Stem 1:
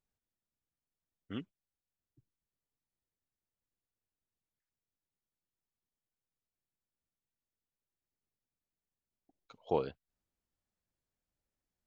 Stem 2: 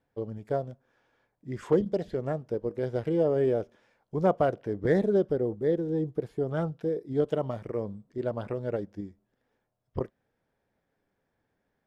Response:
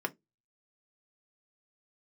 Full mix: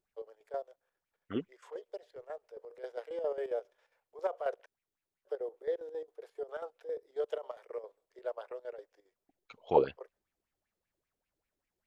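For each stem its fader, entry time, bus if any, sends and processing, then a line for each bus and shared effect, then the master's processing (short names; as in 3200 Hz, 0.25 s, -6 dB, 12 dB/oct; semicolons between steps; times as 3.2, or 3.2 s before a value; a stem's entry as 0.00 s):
-1.0 dB, 0.00 s, no send, LFO bell 5.1 Hz 340–2500 Hz +16 dB
-5.0 dB, 0.00 s, muted 4.66–5.25, no send, gate with hold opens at -59 dBFS; steep high-pass 440 Hz 48 dB/oct; chopper 7.4 Hz, depth 65%, duty 60%; auto duck -6 dB, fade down 1.00 s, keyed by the first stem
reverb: off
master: dry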